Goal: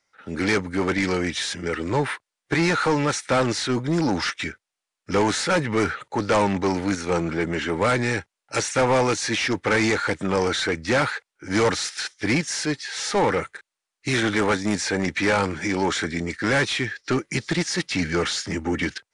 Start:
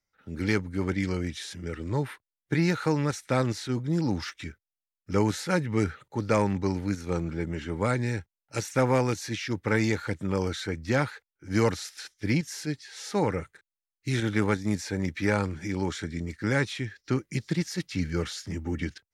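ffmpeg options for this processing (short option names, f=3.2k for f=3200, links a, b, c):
-filter_complex "[0:a]asplit=2[a][b];[b]highpass=f=720:p=1,volume=23dB,asoftclip=type=tanh:threshold=-11dB[c];[a][c]amix=inputs=2:normalize=0,lowpass=f=1.9k:p=1,volume=-6dB,aresample=22050,aresample=44100,highshelf=f=6.2k:g=10.5"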